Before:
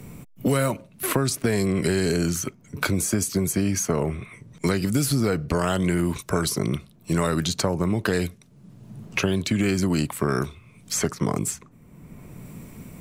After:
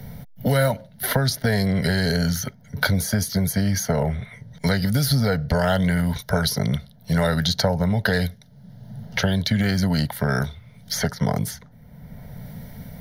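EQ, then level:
phaser with its sweep stopped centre 1,700 Hz, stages 8
+6.5 dB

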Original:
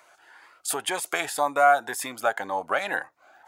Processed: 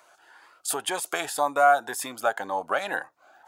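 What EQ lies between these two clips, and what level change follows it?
low-shelf EQ 64 Hz −8 dB
parametric band 2,100 Hz −6 dB 0.45 octaves
0.0 dB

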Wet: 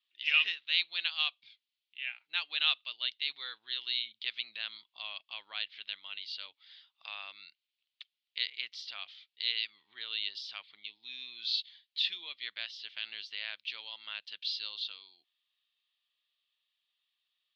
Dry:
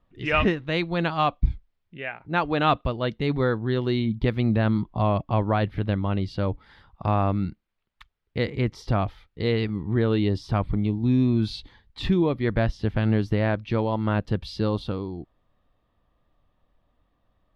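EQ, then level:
flat-topped band-pass 3,600 Hz, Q 1.8
+6.0 dB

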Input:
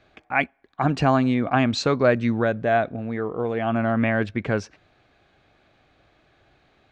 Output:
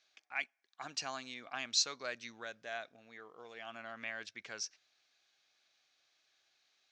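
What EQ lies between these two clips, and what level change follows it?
resonant band-pass 5,800 Hz, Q 3.1
+4.5 dB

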